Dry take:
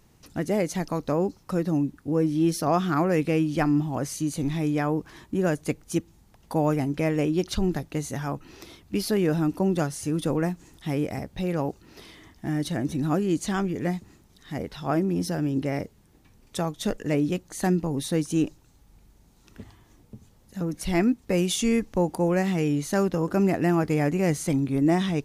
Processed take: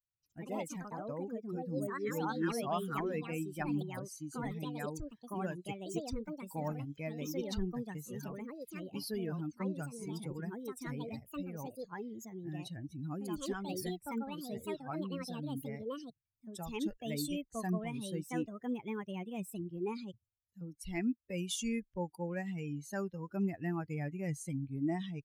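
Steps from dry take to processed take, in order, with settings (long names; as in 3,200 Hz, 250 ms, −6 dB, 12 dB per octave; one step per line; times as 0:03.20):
spectral dynamics exaggerated over time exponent 2
dynamic equaliser 440 Hz, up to −5 dB, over −39 dBFS, Q 1.2
delay with pitch and tempo change per echo 113 ms, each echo +4 semitones, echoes 2
level −7.5 dB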